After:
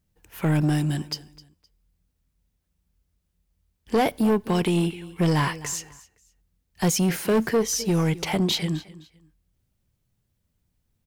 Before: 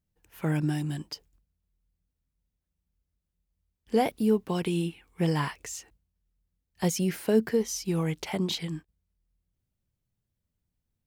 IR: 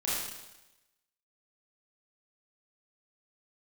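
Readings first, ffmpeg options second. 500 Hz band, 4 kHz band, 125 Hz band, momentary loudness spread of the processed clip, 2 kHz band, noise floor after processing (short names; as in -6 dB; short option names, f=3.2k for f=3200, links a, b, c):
+3.5 dB, +7.0 dB, +6.0 dB, 8 LU, +7.0 dB, -75 dBFS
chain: -filter_complex "[0:a]aecho=1:1:258|516:0.0944|0.0255,asoftclip=type=tanh:threshold=-24.5dB,asplit=2[a][b];[1:a]atrim=start_sample=2205,asetrate=74970,aresample=44100[c];[b][c]afir=irnorm=-1:irlink=0,volume=-28.5dB[d];[a][d]amix=inputs=2:normalize=0,volume=8.5dB"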